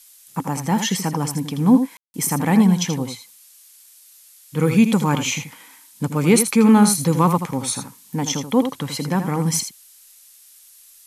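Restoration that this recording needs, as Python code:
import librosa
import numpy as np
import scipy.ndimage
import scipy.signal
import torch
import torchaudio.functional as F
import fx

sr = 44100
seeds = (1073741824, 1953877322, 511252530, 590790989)

y = fx.fix_ambience(x, sr, seeds[0], print_start_s=3.46, print_end_s=3.96, start_s=1.97, end_s=2.14)
y = fx.noise_reduce(y, sr, print_start_s=3.46, print_end_s=3.96, reduce_db=14.0)
y = fx.fix_echo_inverse(y, sr, delay_ms=81, level_db=-9.0)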